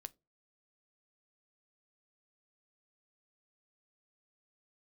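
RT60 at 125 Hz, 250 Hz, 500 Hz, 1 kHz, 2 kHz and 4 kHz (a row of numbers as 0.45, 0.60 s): 0.40, 0.30, 0.30, 0.20, 0.15, 0.15 s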